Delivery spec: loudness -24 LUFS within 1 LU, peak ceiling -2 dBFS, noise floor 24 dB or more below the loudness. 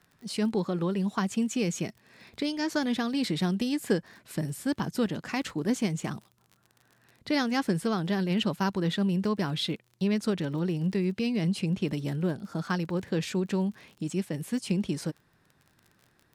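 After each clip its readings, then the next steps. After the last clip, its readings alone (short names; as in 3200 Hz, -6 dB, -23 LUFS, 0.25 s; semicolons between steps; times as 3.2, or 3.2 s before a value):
ticks 38/s; loudness -30.0 LUFS; peak -13.0 dBFS; loudness target -24.0 LUFS
-> de-click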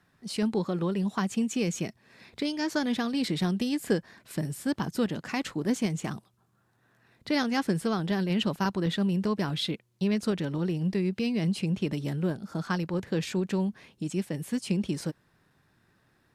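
ticks 0.061/s; loudness -30.0 LUFS; peak -14.0 dBFS; loudness target -24.0 LUFS
-> gain +6 dB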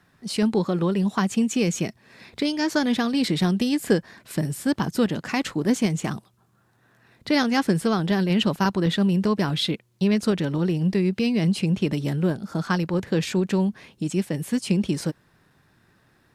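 loudness -24.0 LUFS; peak -8.0 dBFS; noise floor -62 dBFS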